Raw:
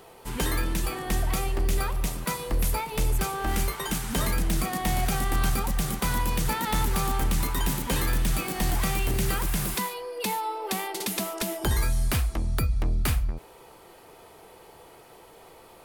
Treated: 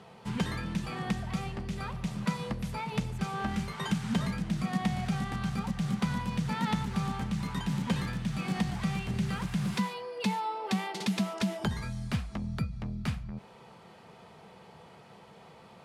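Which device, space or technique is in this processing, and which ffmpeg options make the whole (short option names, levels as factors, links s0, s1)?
jukebox: -af "lowpass=5200,lowshelf=f=250:t=q:w=3:g=6.5,acompressor=threshold=0.0794:ratio=4,highpass=120,volume=0.794"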